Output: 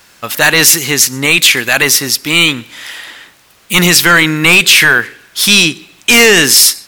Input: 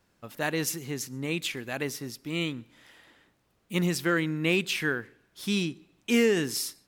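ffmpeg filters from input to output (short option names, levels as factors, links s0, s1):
-af "tiltshelf=f=810:g=-8.5,apsyclip=15.8,volume=0.841"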